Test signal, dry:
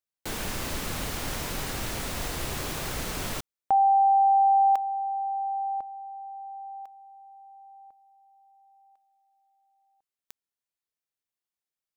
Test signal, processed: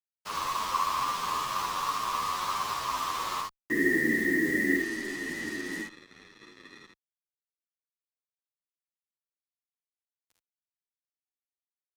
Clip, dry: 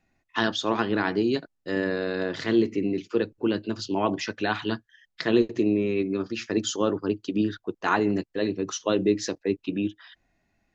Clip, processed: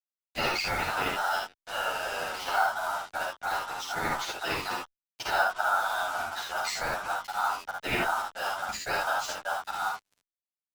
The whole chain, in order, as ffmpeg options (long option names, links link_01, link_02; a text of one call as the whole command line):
ffmpeg -i in.wav -filter_complex "[0:a]lowpass=frequency=5600:width=0.5412,lowpass=frequency=5600:width=1.3066,aemphasis=mode=reproduction:type=bsi,crystalizer=i=8:c=0,afftfilt=real='hypot(re,im)*cos(2*PI*random(0))':imag='hypot(re,im)*sin(2*PI*random(1))':win_size=512:overlap=0.75,aeval=exprs='val(0)*sin(2*PI*1100*n/s)':channel_layout=same,acrusher=bits=5:mix=0:aa=0.5,asplit=2[link_01][link_02];[link_02]aecho=0:1:39|53|75:0.2|0.668|0.596[link_03];[link_01][link_03]amix=inputs=2:normalize=0,asplit=2[link_04][link_05];[link_05]adelay=10.1,afreqshift=-2.2[link_06];[link_04][link_06]amix=inputs=2:normalize=1" out.wav